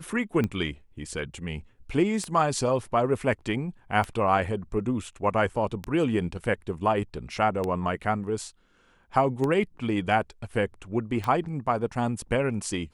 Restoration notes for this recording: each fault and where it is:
scratch tick 33 1/3 rpm −16 dBFS

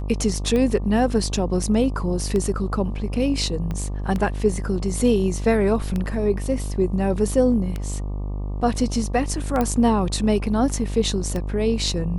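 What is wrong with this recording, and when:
mains buzz 50 Hz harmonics 24 −27 dBFS
scratch tick 33 1/3 rpm −14 dBFS
0:03.71: click −17 dBFS
0:09.61: click −10 dBFS

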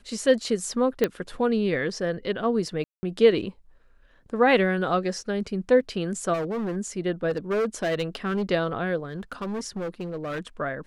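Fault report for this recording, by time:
0:01.04: click −9 dBFS
0:02.84–0:03.03: drop-out 190 ms
0:06.33–0:06.77: clipping −25.5 dBFS
0:07.29–0:08.51: clipping −21.5 dBFS
0:09.04–0:10.40: clipping −27.5 dBFS

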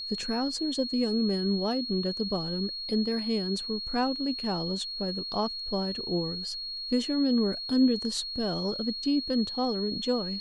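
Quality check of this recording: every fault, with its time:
whistle 4,300 Hz −34 dBFS

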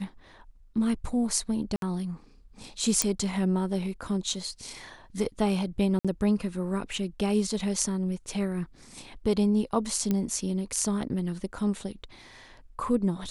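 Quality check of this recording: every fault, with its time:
0:01.76–0:01.82: drop-out 62 ms
0:03.02: click −7 dBFS
0:05.99–0:06.05: drop-out 56 ms
0:10.11: click −14 dBFS

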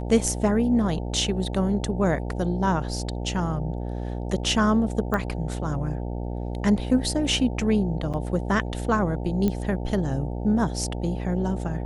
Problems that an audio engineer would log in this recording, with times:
mains buzz 60 Hz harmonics 15 −30 dBFS
0:05.14: click −14 dBFS
0:08.13–0:08.14: drop-out 7.3 ms
0:09.48: click −13 dBFS

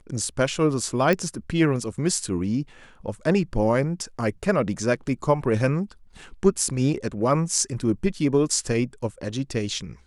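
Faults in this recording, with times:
0:01.13: click −10 dBFS

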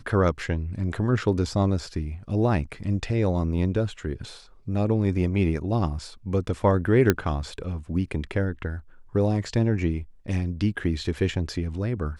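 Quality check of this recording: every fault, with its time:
0:07.10: click −5 dBFS

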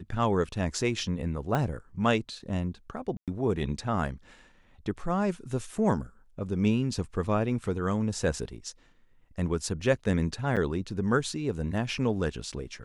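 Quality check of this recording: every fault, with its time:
0:01.55: click −15 dBFS
0:03.17–0:03.28: drop-out 107 ms
0:10.56–0:10.57: drop-out 7.2 ms

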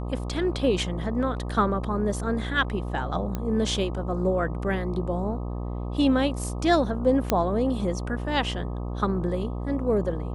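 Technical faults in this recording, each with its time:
mains buzz 60 Hz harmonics 21 −31 dBFS
0:03.35: click −16 dBFS
0:07.30: click −7 dBFS

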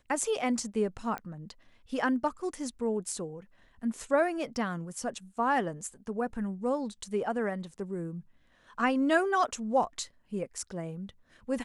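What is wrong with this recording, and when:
0:01.18: click −23 dBFS

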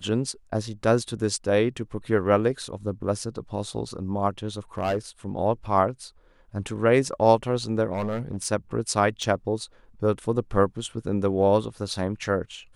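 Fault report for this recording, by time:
0:04.58–0:04.98: clipping −20.5 dBFS
0:07.93–0:08.47: clipping −23.5 dBFS
0:09.23: drop-out 3.1 ms

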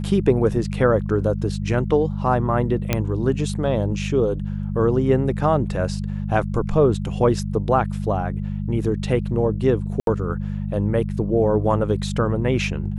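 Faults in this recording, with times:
mains hum 50 Hz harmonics 4 −26 dBFS
0:02.93: click −5 dBFS
0:10.00–0:10.07: drop-out 72 ms

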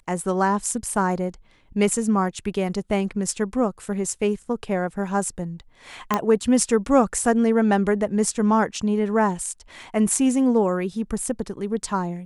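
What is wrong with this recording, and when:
0:06.14: click −7 dBFS

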